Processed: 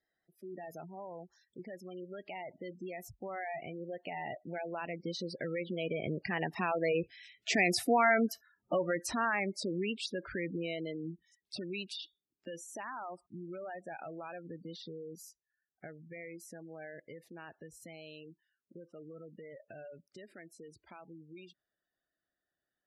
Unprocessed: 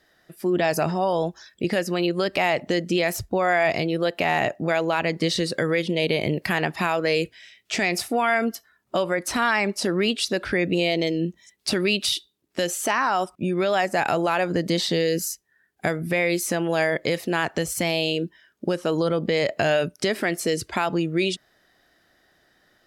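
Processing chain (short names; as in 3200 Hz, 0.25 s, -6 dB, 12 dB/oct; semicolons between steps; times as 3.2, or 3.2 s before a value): Doppler pass-by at 7.85, 11 m/s, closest 9.2 m; spectral gate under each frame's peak -15 dB strong; gain -4 dB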